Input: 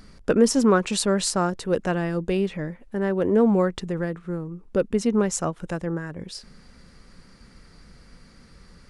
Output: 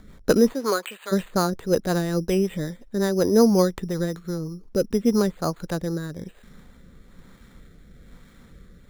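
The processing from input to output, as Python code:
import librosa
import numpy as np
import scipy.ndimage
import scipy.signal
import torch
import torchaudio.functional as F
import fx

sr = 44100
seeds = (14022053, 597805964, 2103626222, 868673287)

y = fx.highpass(x, sr, hz=fx.line((0.52, 420.0), (1.11, 1100.0)), slope=12, at=(0.52, 1.11), fade=0.02)
y = np.repeat(scipy.signal.resample_poly(y, 1, 8), 8)[:len(y)]
y = fx.rotary_switch(y, sr, hz=5.5, then_hz=1.1, switch_at_s=4.64)
y = y * 10.0 ** (3.0 / 20.0)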